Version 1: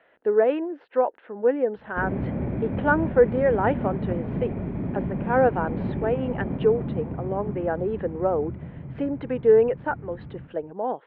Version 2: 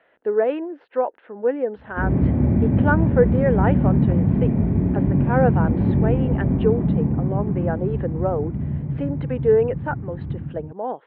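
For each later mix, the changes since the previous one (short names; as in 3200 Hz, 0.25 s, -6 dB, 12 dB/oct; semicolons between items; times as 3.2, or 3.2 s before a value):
reverb: on, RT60 1.2 s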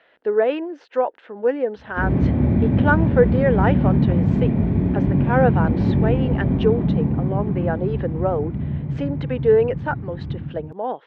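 master: remove air absorption 460 m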